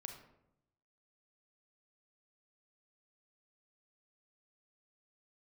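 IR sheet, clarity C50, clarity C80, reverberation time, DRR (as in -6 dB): 6.5 dB, 9.5 dB, 0.80 s, 4.0 dB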